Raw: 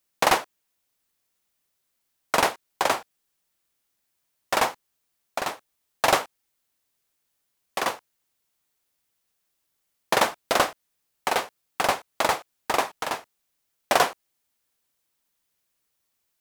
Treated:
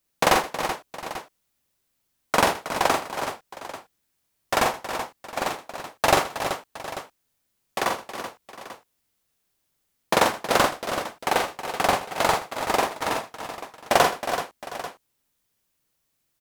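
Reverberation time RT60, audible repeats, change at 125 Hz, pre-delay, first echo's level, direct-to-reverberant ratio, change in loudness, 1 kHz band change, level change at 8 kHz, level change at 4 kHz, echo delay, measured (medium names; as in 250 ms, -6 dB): no reverb, 6, +7.0 dB, no reverb, -3.5 dB, no reverb, +0.5 dB, +2.5 dB, +1.5 dB, +1.5 dB, 44 ms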